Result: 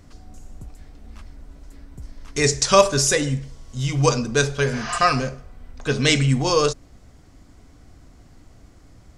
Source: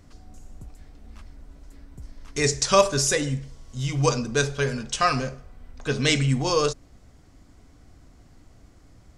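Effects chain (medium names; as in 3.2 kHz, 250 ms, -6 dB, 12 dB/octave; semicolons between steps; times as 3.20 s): spectral replace 4.74–4.95 s, 650–6800 Hz both; trim +3.5 dB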